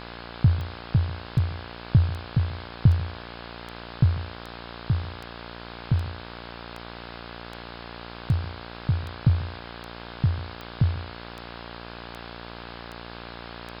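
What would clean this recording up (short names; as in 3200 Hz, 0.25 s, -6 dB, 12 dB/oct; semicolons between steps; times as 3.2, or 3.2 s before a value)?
de-click; de-hum 58.4 Hz, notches 29; noise print and reduce 30 dB; inverse comb 0.141 s -18.5 dB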